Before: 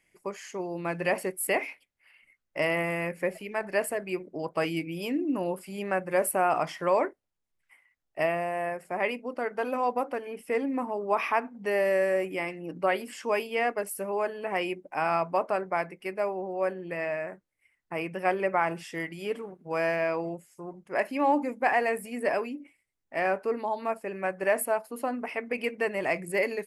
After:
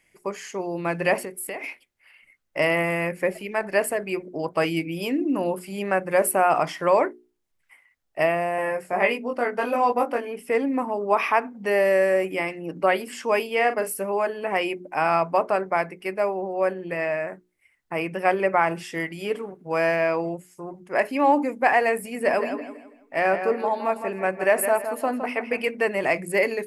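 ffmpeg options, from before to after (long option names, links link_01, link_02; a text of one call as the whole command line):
ffmpeg -i in.wav -filter_complex "[0:a]asettb=1/sr,asplit=3[link_01][link_02][link_03];[link_01]atrim=end=1.244[link_04];[link_02]atrim=start=1.24:end=1.64,asetpts=PTS-STARTPTS,afade=type=in:duration=0.004:curve=qsin,afade=type=out:start_time=0.396:duration=0.004:curve=qsin,acompressor=threshold=-36dB:ratio=4:attack=3.2:release=140:knee=1:detection=peak[link_05];[link_03]atrim=start=1.636[link_06];[link_04][link_05]acrossfade=duration=0.004:curve1=hsin:curve2=qsin[link_07];[link_07][link_06]acrossfade=duration=0.004:curve1=qsin:curve2=hsin,asettb=1/sr,asplit=3[link_08][link_09][link_10];[link_08]atrim=end=8.564[link_11];[link_09]atrim=start=8.56:end=10.25,asetpts=PTS-STARTPTS,afade=type=in:duration=0.004:curve=qsin,afade=type=out:start_time=1.686:duration=0.004:curve=qsin,asplit=2[link_12][link_13];[link_13]adelay=21,volume=-3dB[link_14];[link_12][link_14]amix=inputs=2:normalize=0,atrim=end_sample=74529[link_15];[link_10]atrim=start=10.246[link_16];[link_11][link_15]acrossfade=duration=0.004:curve1=hsin:curve2=qsin[link_17];[link_17][link_16]acrossfade=duration=0.004:curve1=qsin:curve2=hsin,asettb=1/sr,asplit=3[link_18][link_19][link_20];[link_18]atrim=end=13.484[link_21];[link_19]atrim=start=13.48:end=13.94,asetpts=PTS-STARTPTS,afade=type=in:duration=0.004:curve=qsin,afade=type=out:start_time=0.456:duration=0.004:curve=qsin,asplit=2[link_22][link_23];[link_23]adelay=42,volume=-9.5dB[link_24];[link_22][link_24]amix=inputs=2:normalize=0,atrim=end_sample=20286[link_25];[link_20]atrim=start=13.936[link_26];[link_21][link_25]acrossfade=duration=0.004:curve1=hsin:curve2=qsin[link_27];[link_27][link_26]acrossfade=duration=0.004:curve1=qsin:curve2=hsin,asettb=1/sr,asplit=3[link_28][link_29][link_30];[link_28]atrim=end=21.984[link_31];[link_29]atrim=start=21.98:end=25.68,asetpts=PTS-STARTPTS,afade=type=in:duration=0.004:curve=qsin,afade=type=out:start_time=3.696:duration=0.004:curve=qsin,asplit=2[link_32][link_33];[link_33]adelay=163,lowpass=frequency=4900:poles=1,volume=-8.5dB,asplit=2[link_34][link_35];[link_35]adelay=163,lowpass=frequency=4900:poles=1,volume=0.35,asplit=2[link_36][link_37];[link_37]adelay=163,lowpass=frequency=4900:poles=1,volume=0.35,asplit=2[link_38][link_39];[link_39]adelay=163,lowpass=frequency=4900:poles=1,volume=0.35[link_40];[link_32][link_34][link_36][link_38][link_40]amix=inputs=5:normalize=0,atrim=end_sample=163170[link_41];[link_30]atrim=start=25.676[link_42];[link_31][link_41]acrossfade=duration=0.004:curve1=hsin:curve2=qsin[link_43];[link_43][link_42]acrossfade=duration=0.004:curve1=qsin:curve2=hsin,bandreject=frequency=60:width_type=h:width=6,bandreject=frequency=120:width_type=h:width=6,bandreject=frequency=180:width_type=h:width=6,bandreject=frequency=240:width_type=h:width=6,bandreject=frequency=300:width_type=h:width=6,bandreject=frequency=360:width_type=h:width=6,bandreject=frequency=420:width_type=h:width=6,volume=5.5dB" out.wav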